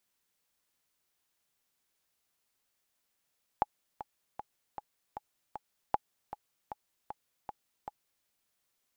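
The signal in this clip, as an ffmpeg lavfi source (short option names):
-f lavfi -i "aevalsrc='pow(10,(-13-13.5*gte(mod(t,6*60/155),60/155))/20)*sin(2*PI*839*mod(t,60/155))*exp(-6.91*mod(t,60/155)/0.03)':d=4.64:s=44100"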